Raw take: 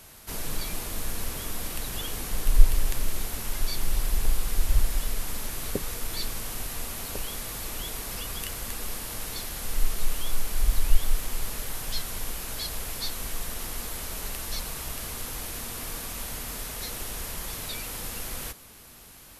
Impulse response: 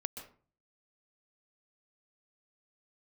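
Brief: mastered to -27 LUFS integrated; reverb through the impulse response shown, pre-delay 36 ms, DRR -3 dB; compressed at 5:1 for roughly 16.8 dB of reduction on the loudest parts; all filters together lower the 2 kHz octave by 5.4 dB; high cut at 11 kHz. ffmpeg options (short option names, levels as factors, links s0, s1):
-filter_complex "[0:a]lowpass=11000,equalizer=f=2000:t=o:g=-7,acompressor=threshold=0.0562:ratio=5,asplit=2[s0][s1];[1:a]atrim=start_sample=2205,adelay=36[s2];[s1][s2]afir=irnorm=-1:irlink=0,volume=1.5[s3];[s0][s3]amix=inputs=2:normalize=0,volume=1.78"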